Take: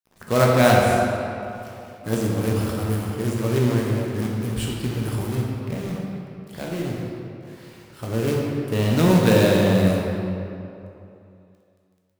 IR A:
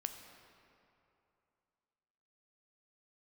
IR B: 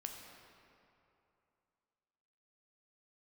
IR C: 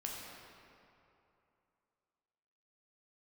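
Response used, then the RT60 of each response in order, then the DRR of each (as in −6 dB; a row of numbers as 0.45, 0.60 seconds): C; 2.8, 2.8, 2.8 seconds; 6.0, 2.0, −2.5 decibels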